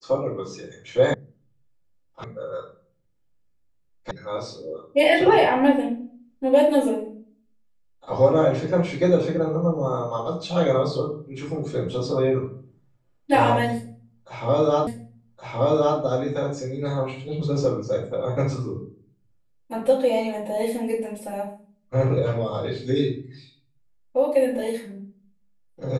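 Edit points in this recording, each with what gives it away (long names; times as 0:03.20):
0:01.14: cut off before it has died away
0:02.24: cut off before it has died away
0:04.11: cut off before it has died away
0:14.87: the same again, the last 1.12 s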